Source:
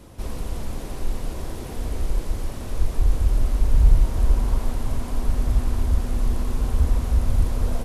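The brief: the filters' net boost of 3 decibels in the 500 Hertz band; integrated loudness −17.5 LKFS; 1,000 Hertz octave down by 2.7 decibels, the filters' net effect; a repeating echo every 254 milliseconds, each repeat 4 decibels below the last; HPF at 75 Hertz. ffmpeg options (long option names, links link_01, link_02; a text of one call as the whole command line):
ffmpeg -i in.wav -af "highpass=75,equalizer=frequency=500:width_type=o:gain=5,equalizer=frequency=1000:width_type=o:gain=-5.5,aecho=1:1:254|508|762|1016|1270|1524|1778|2032|2286:0.631|0.398|0.25|0.158|0.0994|0.0626|0.0394|0.0249|0.0157,volume=11dB" out.wav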